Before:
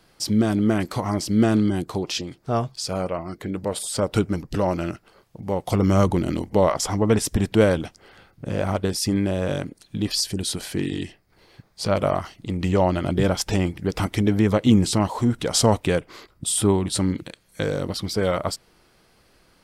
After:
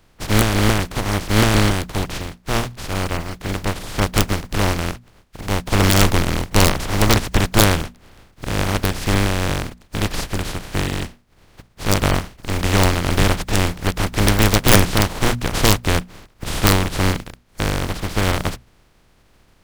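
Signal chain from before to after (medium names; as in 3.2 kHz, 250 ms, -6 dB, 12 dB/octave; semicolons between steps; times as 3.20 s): spectral contrast reduction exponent 0.15; RIAA curve playback; hum notches 60/120/180/240 Hz; integer overflow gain 5 dB; trim +4 dB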